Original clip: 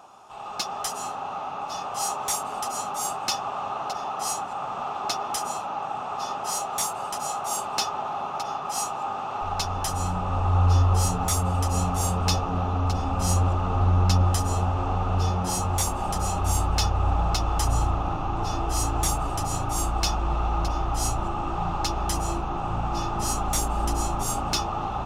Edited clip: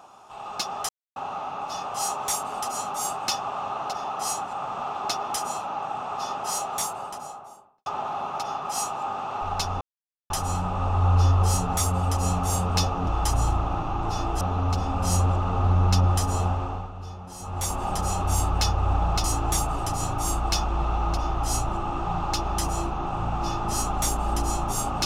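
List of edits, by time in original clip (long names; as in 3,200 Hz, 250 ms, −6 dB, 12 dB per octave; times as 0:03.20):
0:00.89–0:01.16: silence
0:06.65–0:07.86: fade out and dull
0:09.81: splice in silence 0.49 s
0:14.65–0:15.99: duck −14 dB, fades 0.44 s
0:17.41–0:18.75: move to 0:12.58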